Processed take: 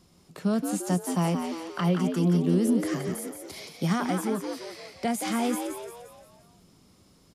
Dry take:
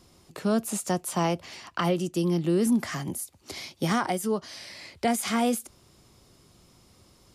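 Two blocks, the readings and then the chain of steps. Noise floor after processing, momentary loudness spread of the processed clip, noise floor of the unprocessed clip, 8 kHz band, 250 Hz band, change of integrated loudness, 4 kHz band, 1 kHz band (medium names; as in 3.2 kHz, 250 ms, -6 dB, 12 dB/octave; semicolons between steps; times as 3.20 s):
-60 dBFS, 15 LU, -60 dBFS, -3.0 dB, +1.5 dB, 0.0 dB, -3.0 dB, -2.5 dB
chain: peaking EQ 180 Hz +9 dB 0.41 oct; frequency-shifting echo 174 ms, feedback 48%, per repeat +78 Hz, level -6.5 dB; trim -4 dB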